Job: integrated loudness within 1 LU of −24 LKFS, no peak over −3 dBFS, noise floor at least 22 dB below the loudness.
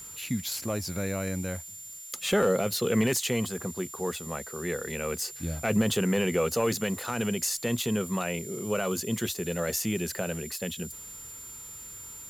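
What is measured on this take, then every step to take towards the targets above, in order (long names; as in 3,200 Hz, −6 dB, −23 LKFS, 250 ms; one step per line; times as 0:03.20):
interfering tone 7,200 Hz; level of the tone −42 dBFS; background noise floor −44 dBFS; target noise floor −52 dBFS; integrated loudness −29.5 LKFS; sample peak −14.5 dBFS; target loudness −24.0 LKFS
→ notch filter 7,200 Hz, Q 30
broadband denoise 8 dB, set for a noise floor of −44 dBFS
level +5.5 dB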